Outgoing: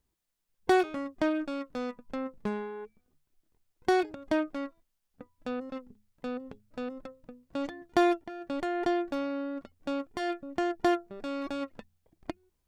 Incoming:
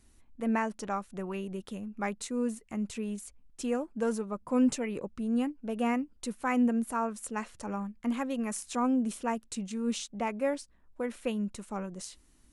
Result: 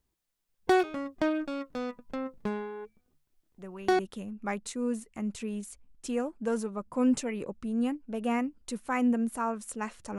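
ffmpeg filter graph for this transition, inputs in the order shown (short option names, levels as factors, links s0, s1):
-filter_complex "[1:a]asplit=2[s0][s1];[0:a]apad=whole_dur=10.18,atrim=end=10.18,atrim=end=3.992[s2];[s1]atrim=start=1.538:end=7.73[s3];[s0]atrim=start=1.13:end=1.54,asetpts=PTS-STARTPTS,volume=0.473,afade=t=in:d=0.004:c=hsin,afade=t=out:st=0.406:d=0.004:c=hsin,adelay=3580[s4];[s2][s3]acrossfade=d=0.004:c1=hsin:c2=hsin[s5];[s5][s4]amix=inputs=2:normalize=0"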